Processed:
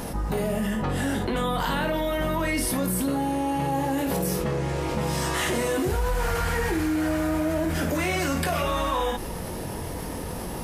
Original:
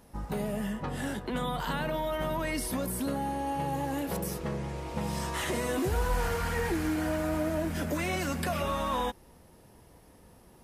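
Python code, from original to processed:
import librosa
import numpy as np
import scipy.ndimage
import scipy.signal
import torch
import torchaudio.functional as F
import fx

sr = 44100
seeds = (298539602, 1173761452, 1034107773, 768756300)

y = fx.room_early_taps(x, sr, ms=(22, 55), db=(-6.5, -8.5))
y = fx.env_flatten(y, sr, amount_pct=70)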